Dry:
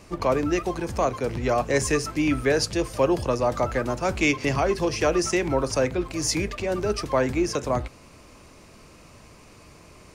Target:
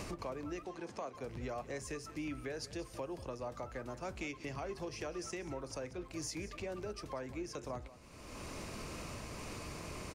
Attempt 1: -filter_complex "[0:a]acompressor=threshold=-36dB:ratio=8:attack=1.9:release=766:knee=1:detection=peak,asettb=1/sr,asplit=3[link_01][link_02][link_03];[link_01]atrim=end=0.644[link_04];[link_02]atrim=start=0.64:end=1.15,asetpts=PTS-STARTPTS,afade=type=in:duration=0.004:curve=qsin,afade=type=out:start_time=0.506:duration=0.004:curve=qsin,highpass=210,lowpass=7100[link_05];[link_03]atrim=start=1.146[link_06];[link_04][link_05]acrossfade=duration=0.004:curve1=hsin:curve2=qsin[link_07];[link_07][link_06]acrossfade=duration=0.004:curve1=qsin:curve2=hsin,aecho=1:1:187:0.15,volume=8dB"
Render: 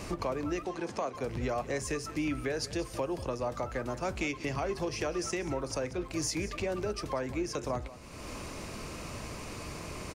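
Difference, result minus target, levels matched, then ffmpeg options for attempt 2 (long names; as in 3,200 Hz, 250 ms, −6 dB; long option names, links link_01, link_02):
downward compressor: peak gain reduction −9 dB
-filter_complex "[0:a]acompressor=threshold=-46dB:ratio=8:attack=1.9:release=766:knee=1:detection=peak,asettb=1/sr,asplit=3[link_01][link_02][link_03];[link_01]atrim=end=0.644[link_04];[link_02]atrim=start=0.64:end=1.15,asetpts=PTS-STARTPTS,afade=type=in:duration=0.004:curve=qsin,afade=type=out:start_time=0.506:duration=0.004:curve=qsin,highpass=210,lowpass=7100[link_05];[link_03]atrim=start=1.146[link_06];[link_04][link_05]acrossfade=duration=0.004:curve1=hsin:curve2=qsin[link_07];[link_07][link_06]acrossfade=duration=0.004:curve1=qsin:curve2=hsin,aecho=1:1:187:0.15,volume=8dB"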